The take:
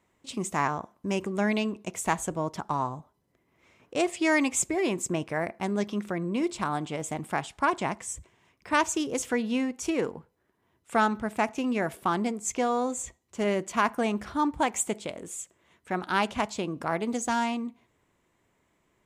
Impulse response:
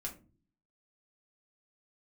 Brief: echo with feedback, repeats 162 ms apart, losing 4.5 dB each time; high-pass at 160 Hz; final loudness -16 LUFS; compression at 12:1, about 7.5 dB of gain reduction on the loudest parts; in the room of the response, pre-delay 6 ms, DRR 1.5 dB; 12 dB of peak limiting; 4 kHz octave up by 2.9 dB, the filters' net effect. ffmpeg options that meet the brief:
-filter_complex "[0:a]highpass=160,equalizer=f=4000:t=o:g=4,acompressor=threshold=0.0501:ratio=12,alimiter=level_in=1.33:limit=0.0631:level=0:latency=1,volume=0.75,aecho=1:1:162|324|486|648|810|972|1134|1296|1458:0.596|0.357|0.214|0.129|0.0772|0.0463|0.0278|0.0167|0.01,asplit=2[s0][s1];[1:a]atrim=start_sample=2205,adelay=6[s2];[s1][s2]afir=irnorm=-1:irlink=0,volume=1[s3];[s0][s3]amix=inputs=2:normalize=0,volume=6.31"

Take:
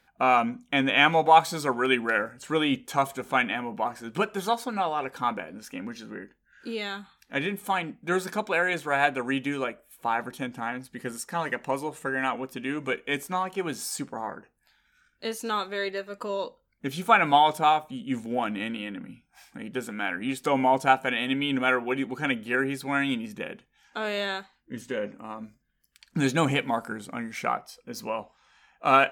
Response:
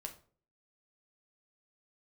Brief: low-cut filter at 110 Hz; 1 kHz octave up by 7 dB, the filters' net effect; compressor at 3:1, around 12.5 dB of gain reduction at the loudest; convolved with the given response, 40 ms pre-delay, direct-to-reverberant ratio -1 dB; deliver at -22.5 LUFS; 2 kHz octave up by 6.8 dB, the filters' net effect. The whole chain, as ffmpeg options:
-filter_complex "[0:a]highpass=110,equalizer=f=1000:t=o:g=8,equalizer=f=2000:t=o:g=6,acompressor=threshold=0.0794:ratio=3,asplit=2[s0][s1];[1:a]atrim=start_sample=2205,adelay=40[s2];[s1][s2]afir=irnorm=-1:irlink=0,volume=1.58[s3];[s0][s3]amix=inputs=2:normalize=0,volume=1.19"

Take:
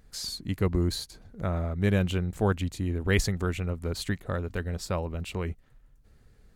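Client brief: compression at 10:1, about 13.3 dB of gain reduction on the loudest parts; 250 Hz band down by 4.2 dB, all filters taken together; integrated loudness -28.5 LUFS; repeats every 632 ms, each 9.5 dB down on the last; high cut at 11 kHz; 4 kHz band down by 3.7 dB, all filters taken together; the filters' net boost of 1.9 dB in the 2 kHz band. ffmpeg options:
-af "lowpass=11000,equalizer=f=250:t=o:g=-6.5,equalizer=f=2000:t=o:g=3.5,equalizer=f=4000:t=o:g=-5.5,acompressor=threshold=0.02:ratio=10,aecho=1:1:632|1264|1896|2528:0.335|0.111|0.0365|0.012,volume=3.76"

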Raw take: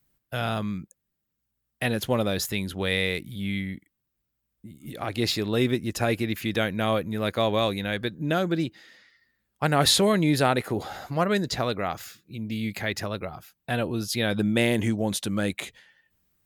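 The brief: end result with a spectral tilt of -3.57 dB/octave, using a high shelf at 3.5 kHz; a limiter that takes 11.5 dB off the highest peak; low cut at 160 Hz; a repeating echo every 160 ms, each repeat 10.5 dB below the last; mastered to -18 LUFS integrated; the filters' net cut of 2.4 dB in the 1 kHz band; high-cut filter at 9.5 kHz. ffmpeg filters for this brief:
-af "highpass=160,lowpass=9500,equalizer=f=1000:t=o:g=-4.5,highshelf=f=3500:g=9,alimiter=limit=0.188:level=0:latency=1,aecho=1:1:160|320|480:0.299|0.0896|0.0269,volume=3.16"

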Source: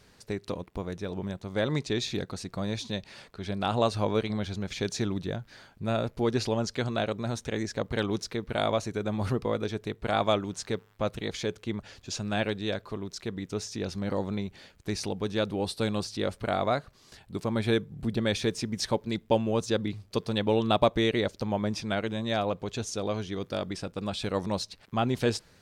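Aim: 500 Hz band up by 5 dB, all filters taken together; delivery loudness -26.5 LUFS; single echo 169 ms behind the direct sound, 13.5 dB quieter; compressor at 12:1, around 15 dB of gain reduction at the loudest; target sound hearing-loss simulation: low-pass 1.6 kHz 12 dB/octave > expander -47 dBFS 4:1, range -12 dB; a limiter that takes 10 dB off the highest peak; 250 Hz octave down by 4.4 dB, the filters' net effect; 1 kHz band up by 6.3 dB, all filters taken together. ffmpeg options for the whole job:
-af "equalizer=f=250:t=o:g=-8.5,equalizer=f=500:t=o:g=6,equalizer=f=1000:t=o:g=7.5,acompressor=threshold=0.0501:ratio=12,alimiter=level_in=1.12:limit=0.0631:level=0:latency=1,volume=0.891,lowpass=1600,aecho=1:1:169:0.211,agate=range=0.251:threshold=0.00447:ratio=4,volume=3.55"

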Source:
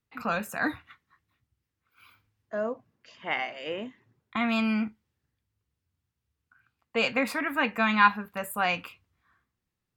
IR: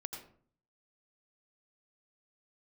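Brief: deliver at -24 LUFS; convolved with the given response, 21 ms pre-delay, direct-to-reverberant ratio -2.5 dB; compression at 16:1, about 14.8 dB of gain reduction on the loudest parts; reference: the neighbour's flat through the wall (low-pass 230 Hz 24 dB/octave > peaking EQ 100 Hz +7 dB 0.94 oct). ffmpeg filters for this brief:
-filter_complex "[0:a]acompressor=threshold=0.0355:ratio=16,asplit=2[s0][s1];[1:a]atrim=start_sample=2205,adelay=21[s2];[s1][s2]afir=irnorm=-1:irlink=0,volume=1.58[s3];[s0][s3]amix=inputs=2:normalize=0,lowpass=f=230:w=0.5412,lowpass=f=230:w=1.3066,equalizer=f=100:t=o:w=0.94:g=7,volume=7.08"

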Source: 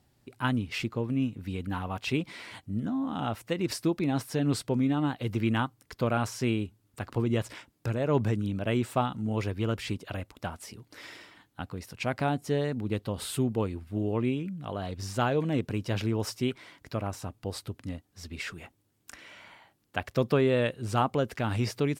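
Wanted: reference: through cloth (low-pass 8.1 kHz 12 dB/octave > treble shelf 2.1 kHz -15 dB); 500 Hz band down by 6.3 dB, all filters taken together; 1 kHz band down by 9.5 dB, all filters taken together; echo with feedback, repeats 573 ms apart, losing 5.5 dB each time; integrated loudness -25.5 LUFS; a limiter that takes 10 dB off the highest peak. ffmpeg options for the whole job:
-af "equalizer=f=500:t=o:g=-5.5,equalizer=f=1000:t=o:g=-7.5,alimiter=level_in=1.12:limit=0.0631:level=0:latency=1,volume=0.891,lowpass=8100,highshelf=f=2100:g=-15,aecho=1:1:573|1146|1719|2292|2865|3438|4011:0.531|0.281|0.149|0.079|0.0419|0.0222|0.0118,volume=3.16"

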